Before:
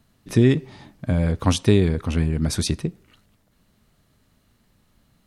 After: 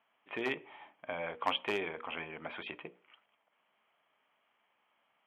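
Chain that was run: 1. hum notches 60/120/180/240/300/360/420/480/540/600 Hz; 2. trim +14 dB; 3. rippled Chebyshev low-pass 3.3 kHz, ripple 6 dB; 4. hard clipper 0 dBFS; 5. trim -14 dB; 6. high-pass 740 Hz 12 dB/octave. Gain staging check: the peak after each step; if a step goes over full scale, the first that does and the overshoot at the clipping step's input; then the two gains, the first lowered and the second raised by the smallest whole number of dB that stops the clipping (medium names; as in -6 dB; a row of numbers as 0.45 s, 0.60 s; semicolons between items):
-4.5 dBFS, +9.5 dBFS, +5.5 dBFS, 0.0 dBFS, -14.0 dBFS, -14.5 dBFS; step 2, 5.5 dB; step 2 +8 dB, step 5 -8 dB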